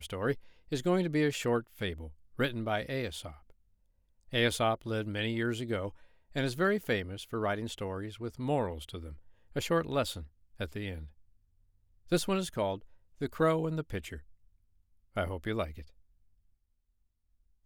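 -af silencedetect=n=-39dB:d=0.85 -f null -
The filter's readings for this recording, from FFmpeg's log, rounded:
silence_start: 3.30
silence_end: 4.33 | silence_duration: 1.03
silence_start: 11.04
silence_end: 12.12 | silence_duration: 1.07
silence_start: 14.18
silence_end: 15.17 | silence_duration: 0.99
silence_start: 15.81
silence_end: 17.65 | silence_duration: 1.84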